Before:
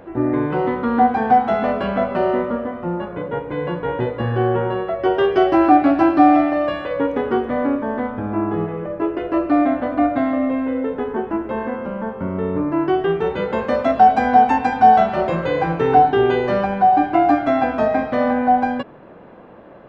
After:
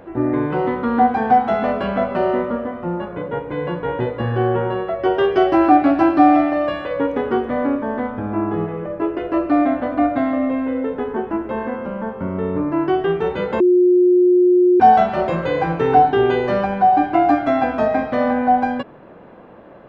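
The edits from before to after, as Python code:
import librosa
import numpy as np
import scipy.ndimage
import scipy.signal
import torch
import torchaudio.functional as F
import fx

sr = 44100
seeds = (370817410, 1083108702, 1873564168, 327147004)

y = fx.edit(x, sr, fx.bleep(start_s=13.6, length_s=1.2, hz=359.0, db=-9.5), tone=tone)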